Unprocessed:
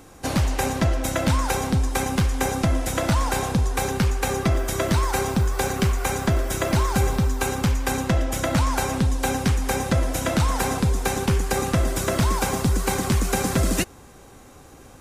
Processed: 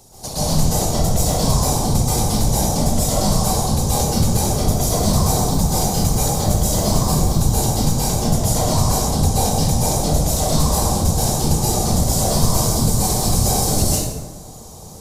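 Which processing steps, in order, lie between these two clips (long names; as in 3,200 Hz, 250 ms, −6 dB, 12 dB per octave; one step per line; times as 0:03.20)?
drawn EQ curve 110 Hz 0 dB, 210 Hz −13 dB, 620 Hz −3 dB, 930 Hz −5 dB, 1,500 Hz −19 dB, 2,600 Hz −13 dB, 4,500 Hz +5 dB
in parallel at 0 dB: downward compressor, threshold −29 dBFS, peak gain reduction 11.5 dB
on the sum: soft clipping −7.5 dBFS, distortion −30 dB
random phases in short frames
dense smooth reverb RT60 1.3 s, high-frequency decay 0.55×, pre-delay 115 ms, DRR −9.5 dB
level −5 dB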